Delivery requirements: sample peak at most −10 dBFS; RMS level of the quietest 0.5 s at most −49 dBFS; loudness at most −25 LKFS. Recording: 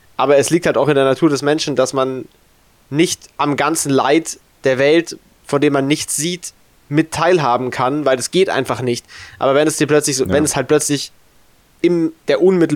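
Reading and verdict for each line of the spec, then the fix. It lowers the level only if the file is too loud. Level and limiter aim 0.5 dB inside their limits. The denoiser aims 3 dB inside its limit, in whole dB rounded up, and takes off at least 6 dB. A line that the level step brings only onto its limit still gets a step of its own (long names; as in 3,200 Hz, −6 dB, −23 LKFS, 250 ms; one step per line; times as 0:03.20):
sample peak −3.5 dBFS: out of spec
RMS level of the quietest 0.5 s −52 dBFS: in spec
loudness −16.0 LKFS: out of spec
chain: level −9.5 dB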